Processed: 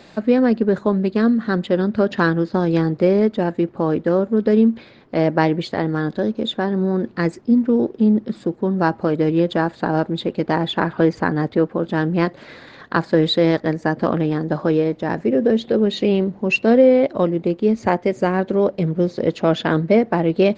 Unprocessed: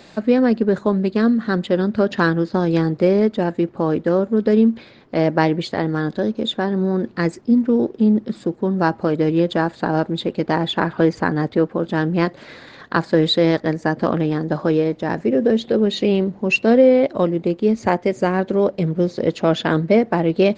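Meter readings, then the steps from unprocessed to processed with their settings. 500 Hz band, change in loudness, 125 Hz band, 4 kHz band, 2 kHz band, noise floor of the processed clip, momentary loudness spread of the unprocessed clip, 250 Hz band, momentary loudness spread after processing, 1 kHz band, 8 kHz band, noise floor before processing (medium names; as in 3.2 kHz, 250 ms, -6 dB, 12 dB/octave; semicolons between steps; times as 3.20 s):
0.0 dB, 0.0 dB, 0.0 dB, -1.5 dB, -0.5 dB, -46 dBFS, 6 LU, 0.0 dB, 6 LU, 0.0 dB, no reading, -45 dBFS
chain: treble shelf 6.2 kHz -6.5 dB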